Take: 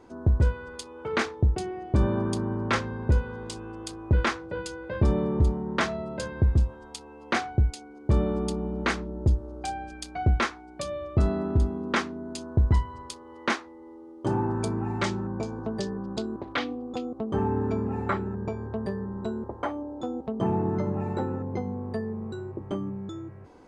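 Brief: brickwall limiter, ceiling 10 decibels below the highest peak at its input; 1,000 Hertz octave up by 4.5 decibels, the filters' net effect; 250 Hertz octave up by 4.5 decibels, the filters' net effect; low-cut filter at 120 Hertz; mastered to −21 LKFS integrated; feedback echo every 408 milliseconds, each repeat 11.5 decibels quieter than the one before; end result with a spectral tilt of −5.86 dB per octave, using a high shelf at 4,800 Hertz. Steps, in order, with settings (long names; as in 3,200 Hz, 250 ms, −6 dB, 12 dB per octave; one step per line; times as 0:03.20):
high-pass filter 120 Hz
parametric band 250 Hz +6 dB
parametric band 1,000 Hz +5 dB
high-shelf EQ 4,800 Hz +8.5 dB
brickwall limiter −18.5 dBFS
repeating echo 408 ms, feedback 27%, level −11.5 dB
level +9 dB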